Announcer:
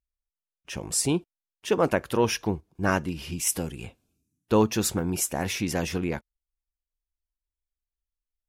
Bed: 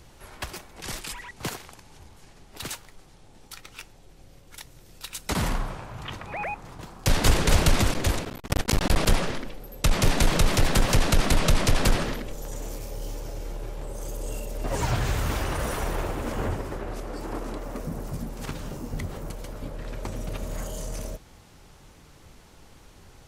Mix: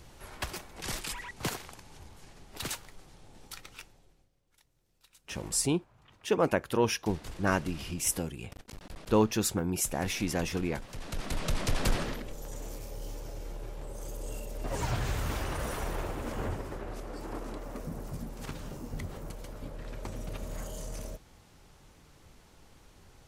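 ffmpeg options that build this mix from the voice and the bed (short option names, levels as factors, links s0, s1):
-filter_complex "[0:a]adelay=4600,volume=0.668[s0];[1:a]volume=6.68,afade=t=out:st=3.46:d=0.84:silence=0.0749894,afade=t=in:st=10.92:d=1.06:silence=0.125893[s1];[s0][s1]amix=inputs=2:normalize=0"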